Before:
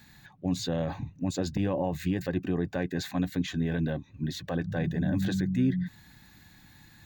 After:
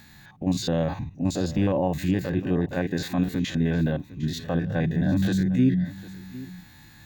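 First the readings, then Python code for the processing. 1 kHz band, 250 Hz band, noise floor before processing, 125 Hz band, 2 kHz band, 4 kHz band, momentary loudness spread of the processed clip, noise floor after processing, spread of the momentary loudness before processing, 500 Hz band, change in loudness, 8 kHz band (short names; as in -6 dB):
+5.0 dB, +5.5 dB, -56 dBFS, +5.5 dB, +4.0 dB, +3.5 dB, 14 LU, -50 dBFS, 6 LU, +5.0 dB, +5.0 dB, +3.5 dB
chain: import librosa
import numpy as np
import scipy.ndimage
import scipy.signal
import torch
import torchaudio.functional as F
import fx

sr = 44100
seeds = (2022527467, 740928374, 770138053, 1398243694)

y = fx.spec_steps(x, sr, hold_ms=50)
y = y + 10.0 ** (-18.0 / 20.0) * np.pad(y, (int(755 * sr / 1000.0), 0))[:len(y)]
y = fx.end_taper(y, sr, db_per_s=560.0)
y = y * 10.0 ** (6.0 / 20.0)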